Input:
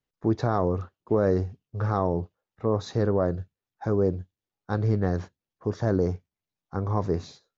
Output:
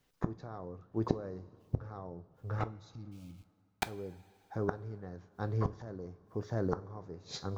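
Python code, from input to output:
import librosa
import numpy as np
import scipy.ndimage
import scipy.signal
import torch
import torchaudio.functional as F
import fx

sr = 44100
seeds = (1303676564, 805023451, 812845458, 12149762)

p1 = x + fx.echo_single(x, sr, ms=696, db=-22.0, dry=0)
p2 = fx.sample_gate(p1, sr, floor_db=-33.5, at=(3.11, 3.89), fade=0.02)
p3 = fx.spec_box(p2, sr, start_s=2.68, length_s=0.94, low_hz=340.0, high_hz=2100.0, gain_db=-25)
p4 = fx.gate_flip(p3, sr, shuts_db=-30.0, range_db=-33)
p5 = fx.rev_double_slope(p4, sr, seeds[0], early_s=0.26, late_s=2.7, knee_db=-18, drr_db=11.5)
y = p5 * librosa.db_to_amplitude(12.5)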